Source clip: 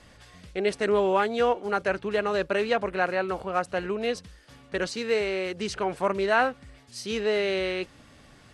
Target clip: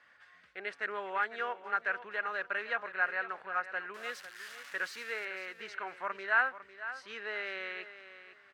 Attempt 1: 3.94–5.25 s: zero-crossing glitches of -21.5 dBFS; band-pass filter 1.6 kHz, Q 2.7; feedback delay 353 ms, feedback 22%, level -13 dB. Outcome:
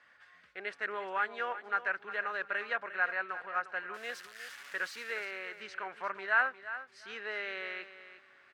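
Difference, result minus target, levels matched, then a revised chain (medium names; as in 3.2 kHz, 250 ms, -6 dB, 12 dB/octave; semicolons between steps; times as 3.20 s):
echo 149 ms early
3.94–5.25 s: zero-crossing glitches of -21.5 dBFS; band-pass filter 1.6 kHz, Q 2.7; feedback delay 502 ms, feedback 22%, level -13 dB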